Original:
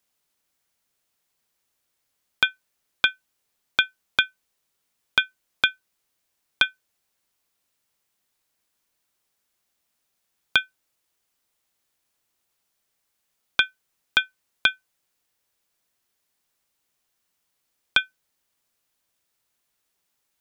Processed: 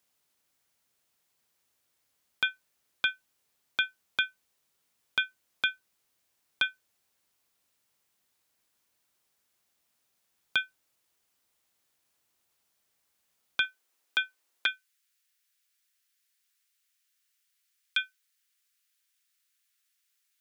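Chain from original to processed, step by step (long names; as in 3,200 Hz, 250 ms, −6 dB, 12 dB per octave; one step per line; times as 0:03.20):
brickwall limiter −13 dBFS, peak gain reduction 10.5 dB
high-pass filter 42 Hz 24 dB per octave, from 0:13.65 270 Hz, from 0:14.66 1,500 Hz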